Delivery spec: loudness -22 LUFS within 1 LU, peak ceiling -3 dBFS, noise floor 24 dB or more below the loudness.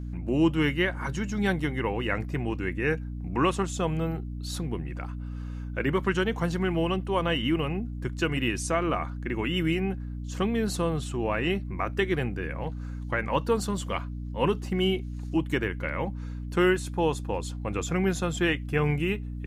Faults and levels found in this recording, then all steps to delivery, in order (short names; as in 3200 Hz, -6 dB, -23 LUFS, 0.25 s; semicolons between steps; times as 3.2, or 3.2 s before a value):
hum 60 Hz; harmonics up to 300 Hz; hum level -32 dBFS; loudness -28.5 LUFS; peak -12.0 dBFS; loudness target -22.0 LUFS
-> notches 60/120/180/240/300 Hz; gain +6.5 dB